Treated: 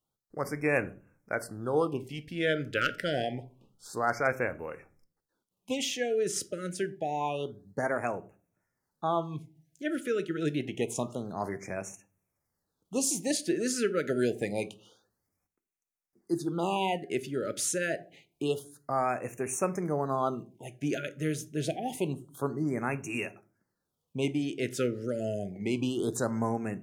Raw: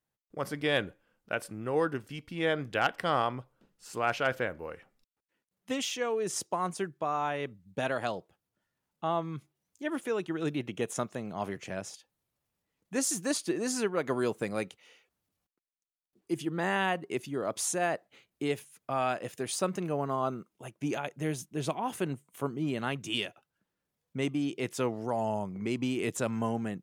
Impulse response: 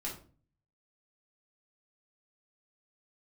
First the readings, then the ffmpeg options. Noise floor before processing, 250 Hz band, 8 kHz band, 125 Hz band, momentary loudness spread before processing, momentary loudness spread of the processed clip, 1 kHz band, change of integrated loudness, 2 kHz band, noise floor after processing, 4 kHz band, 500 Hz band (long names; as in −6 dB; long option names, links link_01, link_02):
below −85 dBFS, +1.5 dB, +1.5 dB, +1.5 dB, 10 LU, 9 LU, −1.0 dB, +1.0 dB, 0.0 dB, −84 dBFS, −1.0 dB, +1.5 dB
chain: -filter_complex "[0:a]asplit=2[link_01][link_02];[1:a]atrim=start_sample=2205,asetrate=48510,aresample=44100[link_03];[link_02][link_03]afir=irnorm=-1:irlink=0,volume=-10dB[link_04];[link_01][link_04]amix=inputs=2:normalize=0,afftfilt=real='re*(1-between(b*sr/1024,870*pow(4000/870,0.5+0.5*sin(2*PI*0.27*pts/sr))/1.41,870*pow(4000/870,0.5+0.5*sin(2*PI*0.27*pts/sr))*1.41))':imag='im*(1-between(b*sr/1024,870*pow(4000/870,0.5+0.5*sin(2*PI*0.27*pts/sr))/1.41,870*pow(4000/870,0.5+0.5*sin(2*PI*0.27*pts/sr))*1.41))':win_size=1024:overlap=0.75"